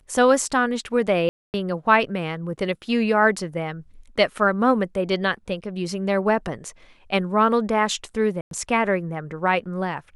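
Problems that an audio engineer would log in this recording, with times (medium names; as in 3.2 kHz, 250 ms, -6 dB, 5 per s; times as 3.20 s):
1.29–1.54 s: dropout 249 ms
8.41–8.51 s: dropout 102 ms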